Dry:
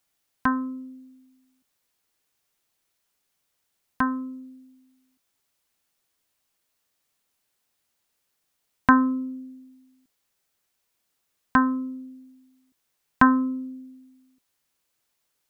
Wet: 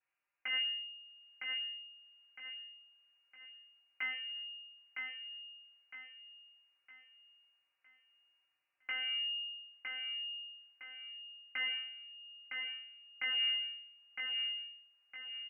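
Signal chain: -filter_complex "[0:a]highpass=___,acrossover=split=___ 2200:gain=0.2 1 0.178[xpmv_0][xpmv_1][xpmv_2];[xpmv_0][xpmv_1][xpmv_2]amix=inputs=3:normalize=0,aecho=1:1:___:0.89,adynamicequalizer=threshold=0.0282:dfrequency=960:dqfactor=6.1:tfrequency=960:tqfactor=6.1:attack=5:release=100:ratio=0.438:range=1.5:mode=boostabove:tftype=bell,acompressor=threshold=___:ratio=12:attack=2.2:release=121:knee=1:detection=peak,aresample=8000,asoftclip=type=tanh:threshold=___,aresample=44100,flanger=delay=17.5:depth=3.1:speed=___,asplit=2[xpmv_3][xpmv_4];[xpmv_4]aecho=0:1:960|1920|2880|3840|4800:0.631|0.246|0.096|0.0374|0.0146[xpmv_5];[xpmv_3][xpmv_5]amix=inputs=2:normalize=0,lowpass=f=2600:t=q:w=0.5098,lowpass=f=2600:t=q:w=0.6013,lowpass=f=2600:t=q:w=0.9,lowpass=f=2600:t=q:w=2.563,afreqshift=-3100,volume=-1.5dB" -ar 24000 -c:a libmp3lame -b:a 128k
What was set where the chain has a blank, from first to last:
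49, 250, 4.7, -23dB, -27.5dB, 0.5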